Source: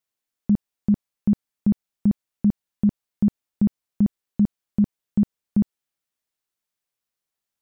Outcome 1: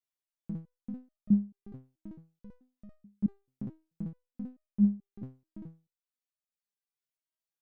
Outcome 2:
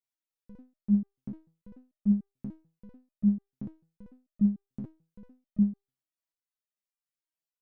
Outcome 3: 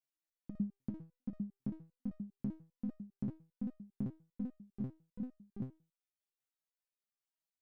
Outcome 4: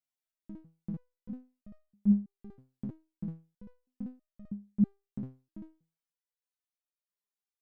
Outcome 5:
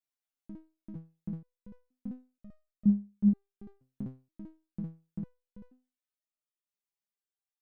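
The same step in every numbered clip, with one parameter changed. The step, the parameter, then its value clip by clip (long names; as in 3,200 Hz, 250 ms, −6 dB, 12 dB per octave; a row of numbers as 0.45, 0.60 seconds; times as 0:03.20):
step-sequenced resonator, speed: 4.6, 6.8, 10, 3.1, 2.1 Hertz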